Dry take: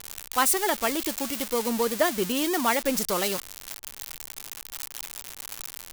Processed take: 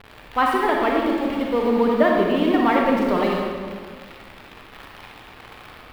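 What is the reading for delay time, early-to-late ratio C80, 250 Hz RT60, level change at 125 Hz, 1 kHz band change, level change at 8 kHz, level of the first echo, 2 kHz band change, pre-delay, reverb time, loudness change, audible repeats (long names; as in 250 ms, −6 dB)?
no echo audible, 2.5 dB, 2.1 s, +9.0 dB, +7.0 dB, below −20 dB, no echo audible, +4.5 dB, 35 ms, 1.7 s, +6.5 dB, no echo audible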